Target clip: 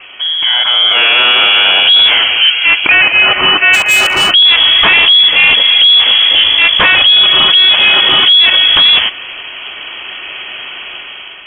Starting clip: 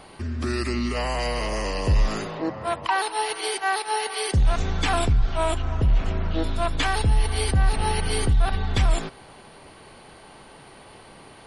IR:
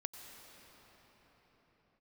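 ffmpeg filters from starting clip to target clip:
-filter_complex "[0:a]adynamicequalizer=threshold=0.0141:dfrequency=130:dqfactor=1.1:tfrequency=130:tqfactor=1.1:attack=5:release=100:ratio=0.375:range=1.5:mode=cutabove:tftype=bell,dynaudnorm=f=390:g=5:m=2.82,highpass=50,lowpass=f=2900:t=q:w=0.5098,lowpass=f=2900:t=q:w=0.6013,lowpass=f=2900:t=q:w=0.9,lowpass=f=2900:t=q:w=2.563,afreqshift=-3400,asplit=3[s0][s1][s2];[s0]afade=t=out:st=3.73:d=0.02[s3];[s1]asoftclip=type=hard:threshold=0.1,afade=t=in:st=3.73:d=0.02,afade=t=out:st=4.29:d=0.02[s4];[s2]afade=t=in:st=4.29:d=0.02[s5];[s3][s4][s5]amix=inputs=3:normalize=0,apsyclip=6.31,volume=0.794"

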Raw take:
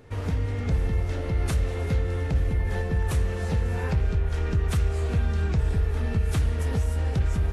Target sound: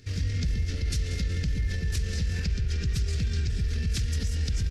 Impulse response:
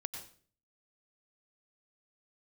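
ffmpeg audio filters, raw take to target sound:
-filter_complex "[0:a]highshelf=f=8200:g=5.5,asplit=2[s0][s1];[s1]adelay=295,lowpass=f=4900:p=1,volume=0.316,asplit=2[s2][s3];[s3]adelay=295,lowpass=f=4900:p=1,volume=0.51,asplit=2[s4][s5];[s5]adelay=295,lowpass=f=4900:p=1,volume=0.51,asplit=2[s6][s7];[s7]adelay=295,lowpass=f=4900:p=1,volume=0.51,asplit=2[s8][s9];[s9]adelay=295,lowpass=f=4900:p=1,volume=0.51,asplit=2[s10][s11];[s11]adelay=295,lowpass=f=4900:p=1,volume=0.51[s12];[s2][s4][s6][s8][s10][s12]amix=inputs=6:normalize=0[s13];[s0][s13]amix=inputs=2:normalize=0,alimiter=limit=0.106:level=0:latency=1:release=67,firequalizer=gain_entry='entry(120,0);entry(870,-21);entry(1700,-1);entry(3500,5);entry(5000,13);entry(9700,-4)':delay=0.05:min_phase=1,atempo=1.6"

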